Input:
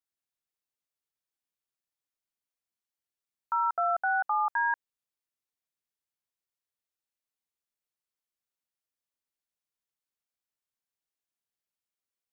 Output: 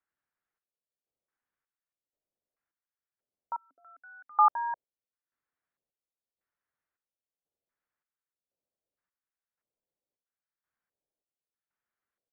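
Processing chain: square tremolo 0.94 Hz, depth 65%, duty 55%; 3.56–4.39 s: vowel filter i; LFO low-pass square 0.78 Hz 560–1600 Hz; trim +3.5 dB

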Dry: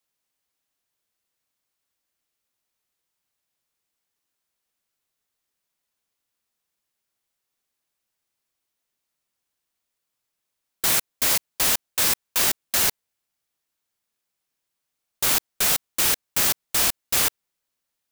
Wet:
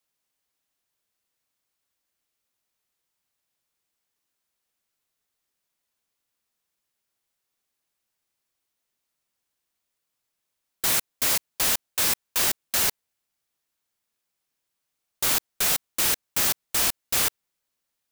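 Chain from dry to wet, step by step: saturation -15.5 dBFS, distortion -16 dB

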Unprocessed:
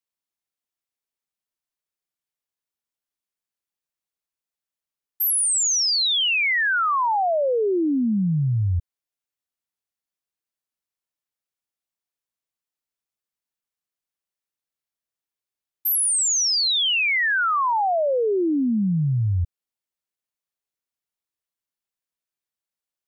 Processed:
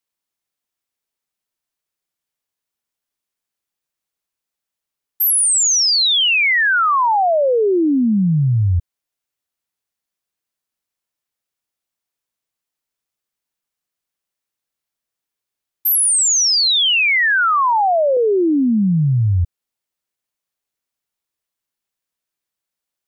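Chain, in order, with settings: 17.40–18.17 s: high-pass 140 Hz 24 dB/octave; trim +6 dB

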